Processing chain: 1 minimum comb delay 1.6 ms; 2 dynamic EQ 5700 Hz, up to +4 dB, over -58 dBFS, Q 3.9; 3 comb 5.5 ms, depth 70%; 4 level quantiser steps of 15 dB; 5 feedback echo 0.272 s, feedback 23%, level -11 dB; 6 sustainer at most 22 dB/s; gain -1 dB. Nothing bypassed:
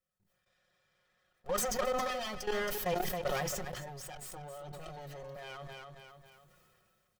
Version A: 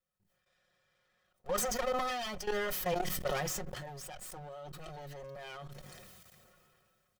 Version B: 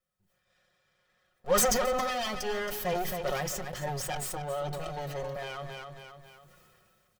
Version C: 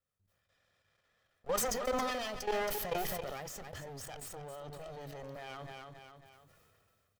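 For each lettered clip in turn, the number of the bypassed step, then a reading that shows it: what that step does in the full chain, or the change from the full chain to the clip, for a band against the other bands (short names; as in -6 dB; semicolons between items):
5, momentary loudness spread change +1 LU; 4, crest factor change +3.0 dB; 3, 125 Hz band -2.0 dB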